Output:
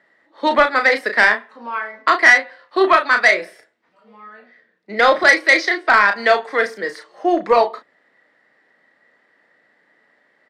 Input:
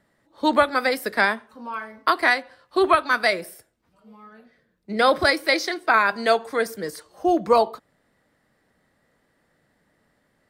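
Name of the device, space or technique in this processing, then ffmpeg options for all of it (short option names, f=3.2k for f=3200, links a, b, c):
intercom: -filter_complex "[0:a]highpass=350,lowpass=4.4k,equalizer=f=1.9k:t=o:w=0.35:g=9,asoftclip=type=tanh:threshold=-8.5dB,asplit=2[a][b];[b]adelay=34,volume=-7dB[c];[a][c]amix=inputs=2:normalize=0,volume=5dB"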